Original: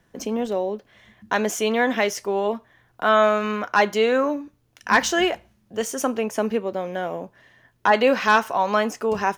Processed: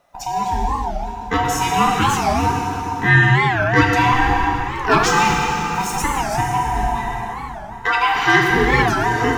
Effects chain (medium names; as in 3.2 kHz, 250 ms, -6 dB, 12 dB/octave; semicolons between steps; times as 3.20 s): split-band scrambler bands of 500 Hz; 5.17–5.98 s: small samples zeroed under -35.5 dBFS; 6.94–8.15 s: high-pass 600 Hz 24 dB/octave; plate-style reverb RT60 4.1 s, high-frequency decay 0.75×, DRR -2 dB; warped record 45 rpm, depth 250 cents; trim +1.5 dB